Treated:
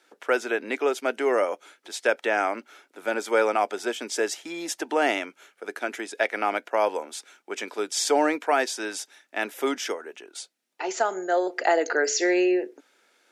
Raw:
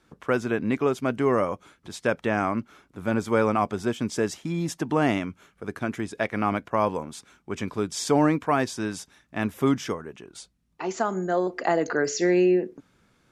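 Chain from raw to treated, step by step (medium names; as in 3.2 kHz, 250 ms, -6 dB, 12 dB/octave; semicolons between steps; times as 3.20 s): Bessel high-pass 530 Hz, order 6; peaking EQ 1.1 kHz -12.5 dB 0.24 oct; trim +5 dB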